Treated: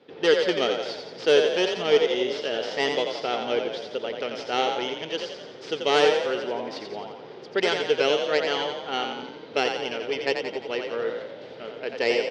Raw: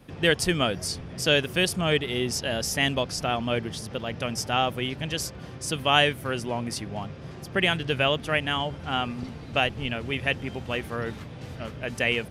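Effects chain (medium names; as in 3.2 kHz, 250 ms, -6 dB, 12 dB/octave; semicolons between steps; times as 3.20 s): tracing distortion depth 0.24 ms; cabinet simulation 420–4300 Hz, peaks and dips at 430 Hz +10 dB, 660 Hz -5 dB, 1.1 kHz -9 dB, 1.7 kHz -5 dB, 2.5 kHz -6 dB; frequency-shifting echo 87 ms, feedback 55%, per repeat +33 Hz, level -5.5 dB; trim +2 dB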